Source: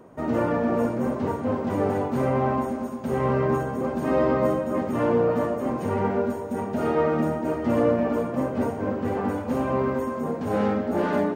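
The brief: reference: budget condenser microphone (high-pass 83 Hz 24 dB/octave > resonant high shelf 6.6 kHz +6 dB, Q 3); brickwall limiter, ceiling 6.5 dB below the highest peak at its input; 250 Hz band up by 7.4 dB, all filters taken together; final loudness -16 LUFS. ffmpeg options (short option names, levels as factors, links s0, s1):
-af "equalizer=f=250:t=o:g=8.5,alimiter=limit=0.237:level=0:latency=1,highpass=f=83:w=0.5412,highpass=f=83:w=1.3066,highshelf=f=6600:t=q:w=3:g=6,volume=2"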